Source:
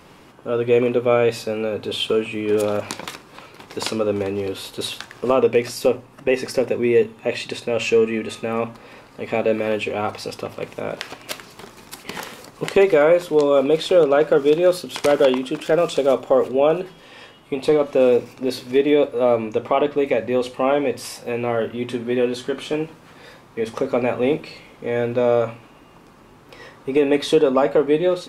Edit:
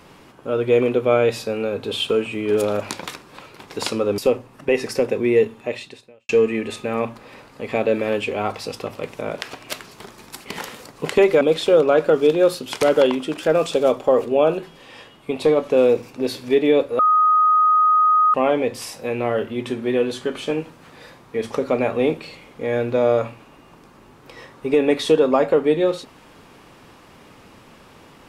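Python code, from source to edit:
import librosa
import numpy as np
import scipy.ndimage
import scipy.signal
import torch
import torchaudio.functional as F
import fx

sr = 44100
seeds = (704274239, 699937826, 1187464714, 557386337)

y = fx.edit(x, sr, fx.cut(start_s=4.18, length_s=1.59),
    fx.fade_out_span(start_s=7.16, length_s=0.72, curve='qua'),
    fx.cut(start_s=13.0, length_s=0.64),
    fx.bleep(start_s=19.22, length_s=1.35, hz=1250.0, db=-12.0), tone=tone)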